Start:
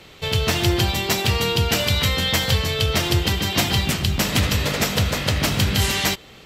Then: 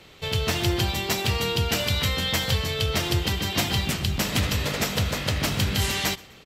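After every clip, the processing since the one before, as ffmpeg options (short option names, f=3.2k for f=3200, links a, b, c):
-af "aecho=1:1:125|250:0.0708|0.0255,volume=-4.5dB"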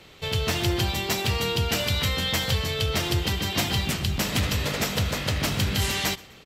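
-af "asoftclip=type=tanh:threshold=-12.5dB"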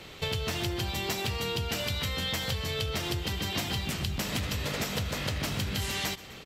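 -af "acompressor=threshold=-32dB:ratio=10,volume=3.5dB"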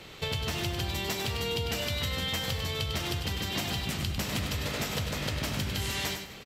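-af "aecho=1:1:99|198|297:0.447|0.107|0.0257,volume=-1dB"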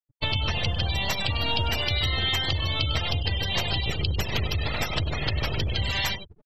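-filter_complex "[0:a]afftfilt=real='re*gte(hypot(re,im),0.0282)':imag='im*gte(hypot(re,im),0.0282)':win_size=1024:overlap=0.75,acrossover=split=150|630|7900[a][b][c][d];[b]aeval=exprs='abs(val(0))':c=same[e];[a][e][c][d]amix=inputs=4:normalize=0,volume=8dB"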